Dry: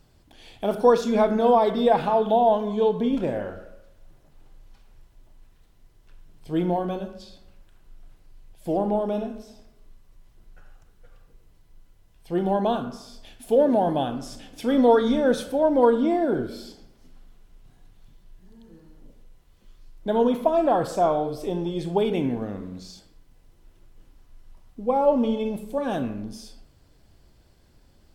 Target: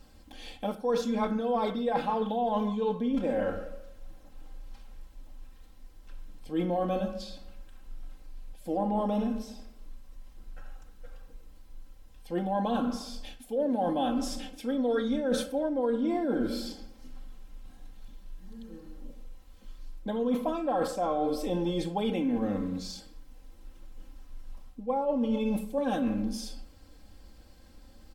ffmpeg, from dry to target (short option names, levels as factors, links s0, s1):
-af "aecho=1:1:3.8:0.85,areverse,acompressor=threshold=0.0501:ratio=16,areverse,volume=1.12"